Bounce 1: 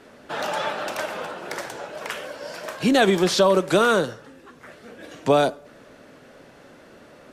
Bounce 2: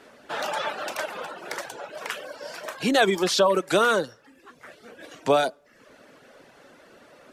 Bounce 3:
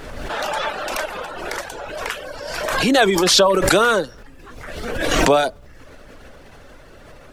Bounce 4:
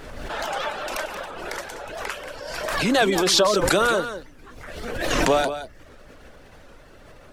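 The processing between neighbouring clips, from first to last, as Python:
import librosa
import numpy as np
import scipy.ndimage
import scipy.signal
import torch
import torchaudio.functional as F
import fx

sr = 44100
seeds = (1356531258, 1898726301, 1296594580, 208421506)

y1 = fx.dereverb_blind(x, sr, rt60_s=0.63)
y1 = fx.low_shelf(y1, sr, hz=280.0, db=-8.5)
y2 = fx.dmg_noise_colour(y1, sr, seeds[0], colour='brown', level_db=-49.0)
y2 = fx.pre_swell(y2, sr, db_per_s=33.0)
y2 = y2 * 10.0 ** (4.5 / 20.0)
y3 = y2 + 10.0 ** (-10.5 / 20.0) * np.pad(y2, (int(178 * sr / 1000.0), 0))[:len(y2)]
y3 = fx.record_warp(y3, sr, rpm=78.0, depth_cents=160.0)
y3 = y3 * 10.0 ** (-4.5 / 20.0)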